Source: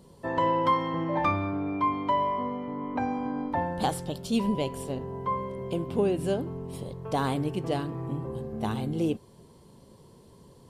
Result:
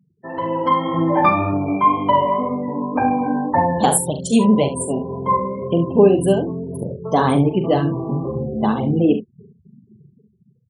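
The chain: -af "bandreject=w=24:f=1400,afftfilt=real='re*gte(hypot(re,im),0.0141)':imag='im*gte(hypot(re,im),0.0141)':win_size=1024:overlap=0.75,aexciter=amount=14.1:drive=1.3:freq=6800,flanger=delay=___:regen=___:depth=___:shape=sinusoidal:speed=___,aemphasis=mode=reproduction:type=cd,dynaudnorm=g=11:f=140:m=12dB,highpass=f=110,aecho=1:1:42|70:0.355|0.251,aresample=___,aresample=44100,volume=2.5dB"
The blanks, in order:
0.3, -22, 4.8, 1.9, 32000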